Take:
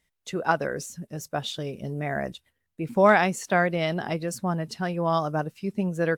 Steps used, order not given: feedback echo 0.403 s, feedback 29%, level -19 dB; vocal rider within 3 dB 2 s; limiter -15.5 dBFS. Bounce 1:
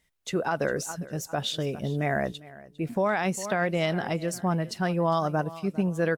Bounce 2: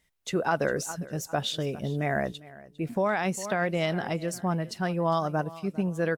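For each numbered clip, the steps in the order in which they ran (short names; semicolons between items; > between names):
feedback echo > vocal rider > limiter; feedback echo > limiter > vocal rider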